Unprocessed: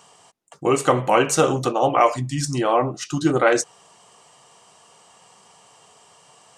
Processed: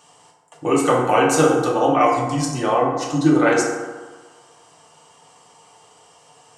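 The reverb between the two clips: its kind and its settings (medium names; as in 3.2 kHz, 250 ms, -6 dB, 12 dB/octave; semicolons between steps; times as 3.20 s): FDN reverb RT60 1.4 s, low-frequency decay 0.9×, high-frequency decay 0.45×, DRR -2.5 dB; trim -3 dB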